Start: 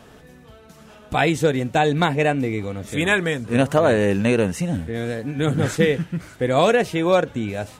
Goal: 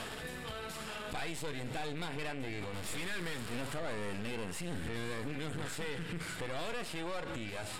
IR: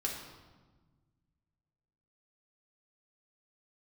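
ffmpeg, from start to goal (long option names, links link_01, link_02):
-filter_complex "[0:a]asettb=1/sr,asplit=3[link_01][link_02][link_03];[link_01]atrim=end=2.744[link_04];[link_02]atrim=start=2.74:end=3.74,asetpts=PTS-STARTPTS,afade=type=in:duration=0.004:curve=qsin,afade=type=out:start_time=0.996:duration=0.004:curve=qsin,aeval=exprs='val(0)+0.5*0.0473*sgn(val(0))':channel_layout=same[link_05];[link_03]atrim=start=3.736[link_06];[link_04][link_05]acrossfade=duration=0.004:curve1=hsin:curve2=qsin[link_07];[link_07][link_06]acrossfade=duration=0.004:curve1=qsin:curve2=hsin,acompressor=threshold=-33dB:ratio=2,tiltshelf=frequency=1100:gain=-6,aeval=exprs='(tanh(17.8*val(0)+0.5)-tanh(0.5))/17.8':channel_layout=same,asettb=1/sr,asplit=3[link_08][link_09][link_10];[link_08]atrim=end=4.594[link_11];[link_09]atrim=start=4.59:end=5.35,asetpts=PTS-STARTPTS,afade=type=in:duration=0.004:curve=qsin,afade=type=out:start_time=0.756:duration=0.004:curve=qsin,acontrast=38[link_12];[link_10]atrim=start=5.346[link_13];[link_11][link_12]acrossfade=duration=0.004:curve1=hsin:curve2=qsin[link_14];[link_14][link_13]acrossfade=duration=0.004:curve1=qsin:curve2=hsin,aeval=exprs='0.1*(cos(1*acos(clip(val(0)/0.1,-1,1)))-cos(1*PI/2))+0.0126*(cos(8*acos(clip(val(0)/0.1,-1,1)))-cos(8*PI/2))':channel_layout=same,lowpass=11000,asplit=2[link_15][link_16];[1:a]atrim=start_sample=2205[link_17];[link_16][link_17]afir=irnorm=-1:irlink=0,volume=-14.5dB[link_18];[link_15][link_18]amix=inputs=2:normalize=0,alimiter=level_in=13.5dB:limit=-24dB:level=0:latency=1:release=75,volume=-13.5dB,equalizer=frequency=6100:width_type=o:width=0.23:gain=-11.5,volume=8dB"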